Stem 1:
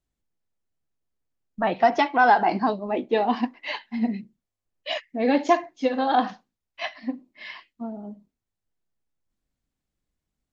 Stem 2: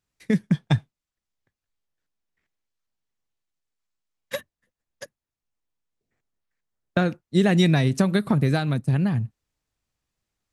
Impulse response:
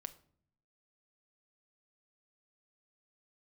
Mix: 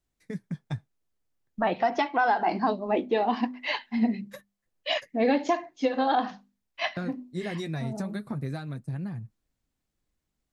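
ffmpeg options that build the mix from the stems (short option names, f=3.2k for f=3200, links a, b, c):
-filter_complex "[0:a]bandreject=f=50:t=h:w=6,bandreject=f=100:t=h:w=6,bandreject=f=150:t=h:w=6,bandreject=f=200:t=h:w=6,bandreject=f=250:t=h:w=6,volume=1.5dB[a];[1:a]equalizer=f=3k:t=o:w=0.4:g=-9.5,flanger=delay=5.6:depth=3.8:regen=-48:speed=0.44:shape=triangular,volume=-9dB,asplit=2[b][c];[c]apad=whole_len=464283[d];[a][d]sidechaincompress=threshold=-36dB:ratio=8:attack=16:release=109[e];[e][b]amix=inputs=2:normalize=0,alimiter=limit=-14.5dB:level=0:latency=1:release=351"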